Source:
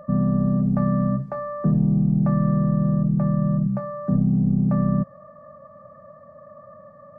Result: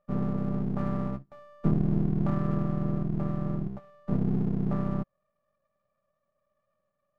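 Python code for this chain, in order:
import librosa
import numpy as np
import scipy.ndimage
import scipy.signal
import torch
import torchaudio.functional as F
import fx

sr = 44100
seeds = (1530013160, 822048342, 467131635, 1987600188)

y = np.where(x < 0.0, 10.0 ** (-12.0 / 20.0) * x, x)
y = fx.upward_expand(y, sr, threshold_db=-39.0, expansion=2.5)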